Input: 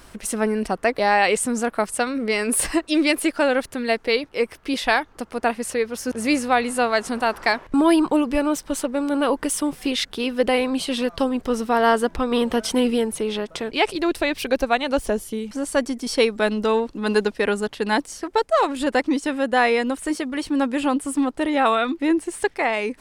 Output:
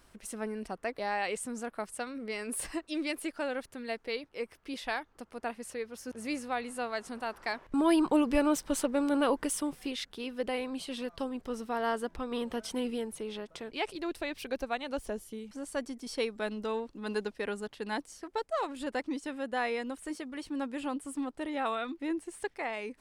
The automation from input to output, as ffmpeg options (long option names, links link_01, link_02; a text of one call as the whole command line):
ffmpeg -i in.wav -af "volume=-5.5dB,afade=type=in:start_time=7.47:duration=0.84:silence=0.334965,afade=type=out:start_time=9.03:duration=0.95:silence=0.375837" out.wav